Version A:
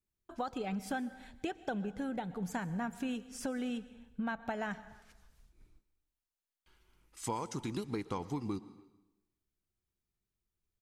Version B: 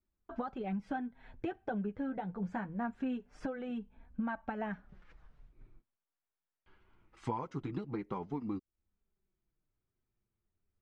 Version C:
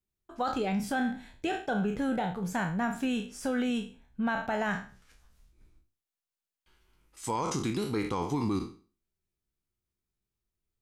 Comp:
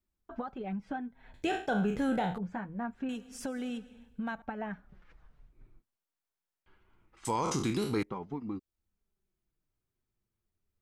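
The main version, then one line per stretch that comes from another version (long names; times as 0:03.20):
B
0:01.34–0:02.38: punch in from C
0:03.09–0:04.42: punch in from A
0:07.25–0:08.03: punch in from C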